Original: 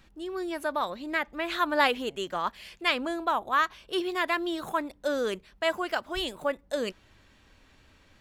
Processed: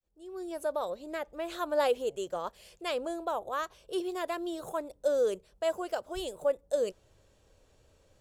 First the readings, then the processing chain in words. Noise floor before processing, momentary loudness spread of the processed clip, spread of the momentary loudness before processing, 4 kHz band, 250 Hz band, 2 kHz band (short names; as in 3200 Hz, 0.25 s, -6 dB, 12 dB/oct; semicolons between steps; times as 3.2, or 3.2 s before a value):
-60 dBFS, 10 LU, 7 LU, -10.0 dB, -6.0 dB, -13.0 dB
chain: opening faded in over 0.57 s; graphic EQ 125/250/500/1000/2000/4000/8000 Hz +3/-9/+11/-4/-10/-4/+6 dB; gain -4.5 dB